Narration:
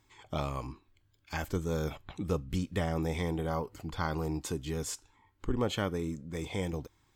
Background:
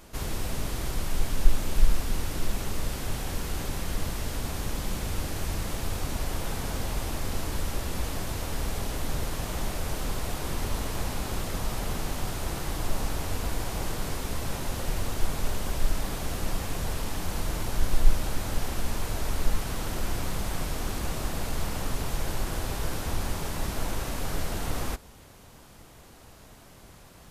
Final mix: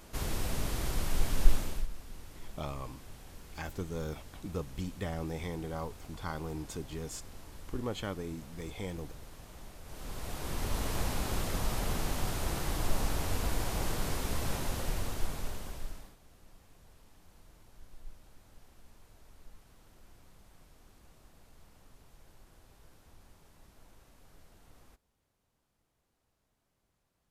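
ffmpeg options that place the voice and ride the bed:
ffmpeg -i stem1.wav -i stem2.wav -filter_complex "[0:a]adelay=2250,volume=-5.5dB[link_01];[1:a]volume=14dB,afade=type=out:start_time=1.51:duration=0.36:silence=0.158489,afade=type=in:start_time=9.84:duration=1.08:silence=0.149624,afade=type=out:start_time=14.51:duration=1.65:silence=0.0473151[link_02];[link_01][link_02]amix=inputs=2:normalize=0" out.wav

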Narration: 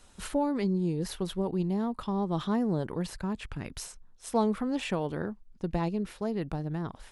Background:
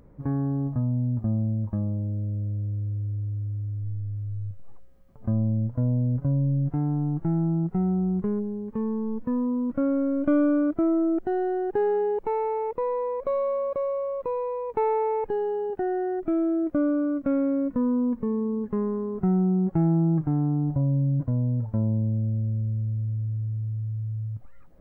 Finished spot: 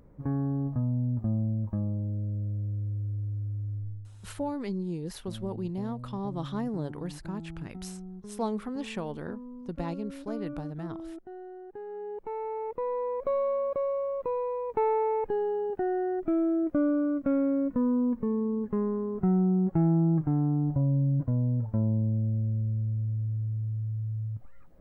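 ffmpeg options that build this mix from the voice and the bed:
ffmpeg -i stem1.wav -i stem2.wav -filter_complex "[0:a]adelay=4050,volume=-4.5dB[link_01];[1:a]volume=12.5dB,afade=type=out:start_time=3.76:duration=0.34:silence=0.188365,afade=type=in:start_time=11.86:duration=1.4:silence=0.16788[link_02];[link_01][link_02]amix=inputs=2:normalize=0" out.wav

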